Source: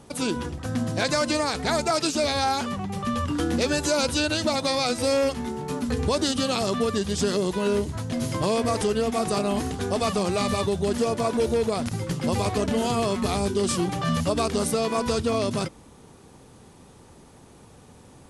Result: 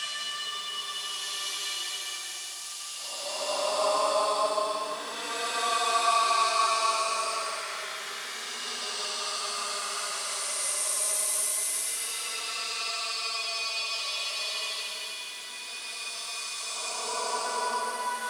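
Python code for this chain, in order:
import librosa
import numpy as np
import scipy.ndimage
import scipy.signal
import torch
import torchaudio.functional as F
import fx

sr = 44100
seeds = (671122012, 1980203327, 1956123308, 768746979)

y = fx.filter_lfo_highpass(x, sr, shape='saw_up', hz=1.4, low_hz=890.0, high_hz=3800.0, q=1.4)
y = fx.echo_heads(y, sr, ms=182, heads='first and second', feedback_pct=65, wet_db=-19.0)
y = fx.paulstretch(y, sr, seeds[0], factor=19.0, window_s=0.1, from_s=14.09)
y = fx.echo_crushed(y, sr, ms=176, feedback_pct=55, bits=8, wet_db=-12)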